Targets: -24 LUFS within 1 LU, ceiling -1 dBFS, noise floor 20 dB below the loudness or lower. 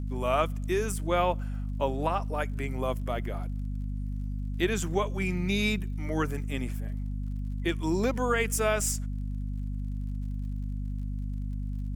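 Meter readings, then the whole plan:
tick rate 52 per s; hum 50 Hz; highest harmonic 250 Hz; hum level -30 dBFS; loudness -31.0 LUFS; peak level -12.0 dBFS; loudness target -24.0 LUFS
-> de-click; hum notches 50/100/150/200/250 Hz; trim +7 dB

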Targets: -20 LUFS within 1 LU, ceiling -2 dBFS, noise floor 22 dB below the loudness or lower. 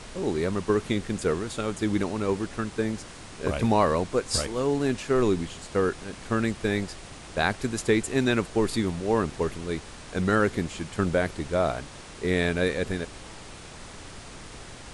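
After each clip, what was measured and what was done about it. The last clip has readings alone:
noise floor -44 dBFS; noise floor target -49 dBFS; loudness -27.0 LUFS; peak level -9.5 dBFS; loudness target -20.0 LUFS
-> noise print and reduce 6 dB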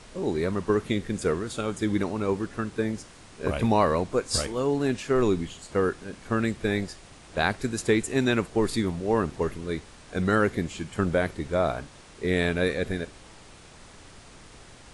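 noise floor -49 dBFS; loudness -27.0 LUFS; peak level -9.5 dBFS; loudness target -20.0 LUFS
-> trim +7 dB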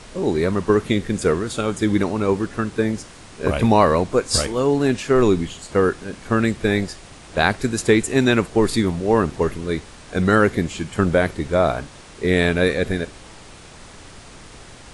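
loudness -20.0 LUFS; peak level -2.5 dBFS; noise floor -42 dBFS

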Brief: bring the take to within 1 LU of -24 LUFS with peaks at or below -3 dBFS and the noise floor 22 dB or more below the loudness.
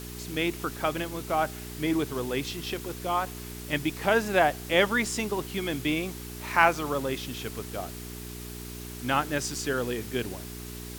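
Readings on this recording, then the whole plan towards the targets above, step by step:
hum 60 Hz; highest harmonic 420 Hz; hum level -39 dBFS; noise floor -40 dBFS; noise floor target -51 dBFS; loudness -28.5 LUFS; peak level -5.0 dBFS; loudness target -24.0 LUFS
-> de-hum 60 Hz, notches 7; noise print and reduce 11 dB; trim +4.5 dB; peak limiter -3 dBFS

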